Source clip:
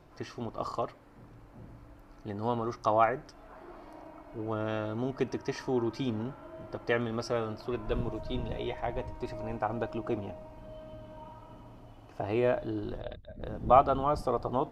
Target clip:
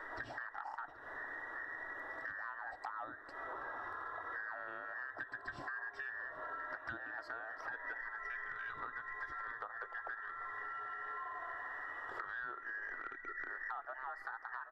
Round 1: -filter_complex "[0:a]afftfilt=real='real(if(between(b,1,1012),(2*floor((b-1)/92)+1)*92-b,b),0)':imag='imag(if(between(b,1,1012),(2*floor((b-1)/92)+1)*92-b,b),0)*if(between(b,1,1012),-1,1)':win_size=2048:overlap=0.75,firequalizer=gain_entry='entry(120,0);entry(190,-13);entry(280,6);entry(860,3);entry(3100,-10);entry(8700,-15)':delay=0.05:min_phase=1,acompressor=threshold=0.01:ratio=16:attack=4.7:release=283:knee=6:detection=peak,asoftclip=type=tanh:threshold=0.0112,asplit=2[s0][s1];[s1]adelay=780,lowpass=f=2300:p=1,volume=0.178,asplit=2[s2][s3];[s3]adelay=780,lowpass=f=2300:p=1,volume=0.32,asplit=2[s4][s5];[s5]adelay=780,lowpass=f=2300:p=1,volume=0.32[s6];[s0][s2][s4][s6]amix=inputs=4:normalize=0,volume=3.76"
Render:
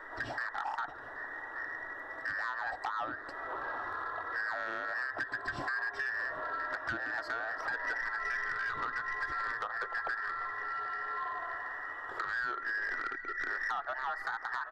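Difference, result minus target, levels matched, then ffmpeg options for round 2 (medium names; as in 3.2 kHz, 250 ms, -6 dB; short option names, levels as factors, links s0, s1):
compression: peak gain reduction -10.5 dB
-filter_complex "[0:a]afftfilt=real='real(if(between(b,1,1012),(2*floor((b-1)/92)+1)*92-b,b),0)':imag='imag(if(between(b,1,1012),(2*floor((b-1)/92)+1)*92-b,b),0)*if(between(b,1,1012),-1,1)':win_size=2048:overlap=0.75,firequalizer=gain_entry='entry(120,0);entry(190,-13);entry(280,6);entry(860,3);entry(3100,-10);entry(8700,-15)':delay=0.05:min_phase=1,acompressor=threshold=0.00282:ratio=16:attack=4.7:release=283:knee=6:detection=peak,asoftclip=type=tanh:threshold=0.0112,asplit=2[s0][s1];[s1]adelay=780,lowpass=f=2300:p=1,volume=0.178,asplit=2[s2][s3];[s3]adelay=780,lowpass=f=2300:p=1,volume=0.32,asplit=2[s4][s5];[s5]adelay=780,lowpass=f=2300:p=1,volume=0.32[s6];[s0][s2][s4][s6]amix=inputs=4:normalize=0,volume=3.76"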